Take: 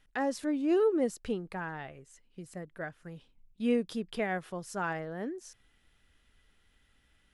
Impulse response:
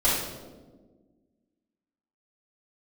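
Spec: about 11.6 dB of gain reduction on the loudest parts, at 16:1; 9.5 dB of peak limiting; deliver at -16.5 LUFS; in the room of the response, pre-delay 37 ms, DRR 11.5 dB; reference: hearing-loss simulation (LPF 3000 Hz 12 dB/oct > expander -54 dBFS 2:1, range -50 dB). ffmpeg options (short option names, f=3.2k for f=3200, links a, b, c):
-filter_complex "[0:a]acompressor=threshold=-34dB:ratio=16,alimiter=level_in=10dB:limit=-24dB:level=0:latency=1,volume=-10dB,asplit=2[a][b];[1:a]atrim=start_sample=2205,adelay=37[c];[b][c]afir=irnorm=-1:irlink=0,volume=-26dB[d];[a][d]amix=inputs=2:normalize=0,lowpass=3k,agate=range=-50dB:threshold=-54dB:ratio=2,volume=27dB"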